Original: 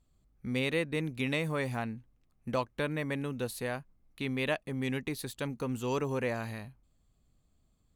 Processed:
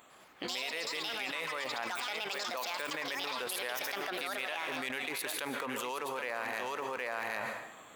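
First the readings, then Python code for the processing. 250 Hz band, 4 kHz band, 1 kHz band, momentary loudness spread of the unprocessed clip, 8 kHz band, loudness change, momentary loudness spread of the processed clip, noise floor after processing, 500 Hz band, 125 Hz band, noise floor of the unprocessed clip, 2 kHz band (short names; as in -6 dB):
-11.0 dB, +6.0 dB, +3.5 dB, 10 LU, +6.0 dB, -2.0 dB, 2 LU, -55 dBFS, -5.0 dB, -22.0 dB, -71 dBFS, +2.5 dB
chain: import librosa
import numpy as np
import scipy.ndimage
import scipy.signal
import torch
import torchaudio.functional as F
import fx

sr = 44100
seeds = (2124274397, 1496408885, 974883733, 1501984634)

p1 = fx.wiener(x, sr, points=9)
p2 = scipy.signal.sosfilt(scipy.signal.butter(2, 800.0, 'highpass', fs=sr, output='sos'), p1)
p3 = fx.high_shelf(p2, sr, hz=12000.0, db=7.0)
p4 = fx.rider(p3, sr, range_db=10, speed_s=0.5)
p5 = p4 + fx.echo_single(p4, sr, ms=768, db=-12.0, dry=0)
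p6 = fx.rev_plate(p5, sr, seeds[0], rt60_s=0.84, hf_ratio=0.75, predelay_ms=115, drr_db=14.0)
p7 = fx.echo_pitch(p6, sr, ms=103, semitones=6, count=2, db_per_echo=-3.0)
p8 = fx.env_flatten(p7, sr, amount_pct=100)
y = p8 * librosa.db_to_amplitude(-5.0)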